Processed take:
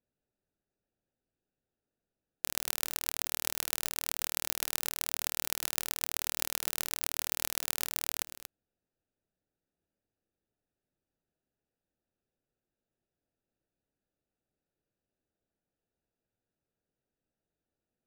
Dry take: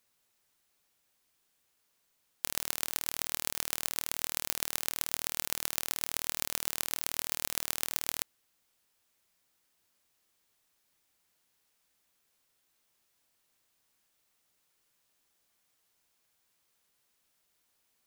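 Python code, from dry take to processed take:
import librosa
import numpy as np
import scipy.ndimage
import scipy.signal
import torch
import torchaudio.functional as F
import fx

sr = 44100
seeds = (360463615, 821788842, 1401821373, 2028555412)

p1 = fx.wiener(x, sr, points=41)
y = p1 + fx.echo_single(p1, sr, ms=233, db=-13.0, dry=0)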